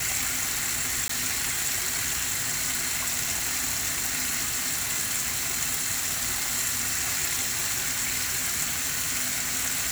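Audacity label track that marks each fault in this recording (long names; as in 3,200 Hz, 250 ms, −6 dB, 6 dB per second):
1.080000	1.090000	drop-out 14 ms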